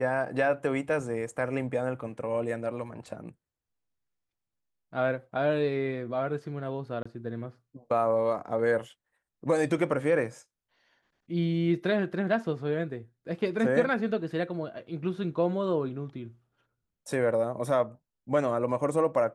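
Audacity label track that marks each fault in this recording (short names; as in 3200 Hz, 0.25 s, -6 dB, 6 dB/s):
7.030000	7.050000	gap 25 ms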